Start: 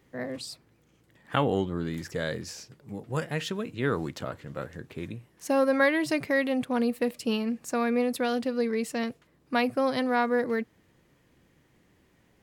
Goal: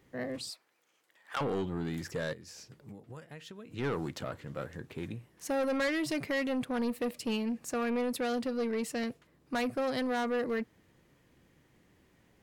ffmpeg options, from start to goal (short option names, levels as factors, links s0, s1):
-filter_complex "[0:a]asettb=1/sr,asplit=3[s0][s1][s2];[s0]atrim=end=0.504[s3];[s1]atrim=start=0.5:end=1.41,asetpts=PTS-STARTPTS,afade=t=in:d=0.004:c=qsin,afade=t=out:st=0.906:d=0.004:c=qsin,highpass=740[s4];[s2]atrim=start=1.406[s5];[s3][s4]acrossfade=d=0.004:c1=hsin:c2=qsin[s6];[s6][s5]acrossfade=d=0.004:c1=qsin:c2=hsin,asplit=3[s7][s8][s9];[s7]afade=t=out:st=2.32:d=0.02[s10];[s8]acompressor=threshold=0.00708:ratio=8,afade=t=in:st=2.32:d=0.02,afade=t=out:st=3.7:d=0.02[s11];[s9]afade=t=in:st=3.7:d=0.02[s12];[s10][s11][s12]amix=inputs=3:normalize=0,asoftclip=type=tanh:threshold=0.0531,volume=0.841"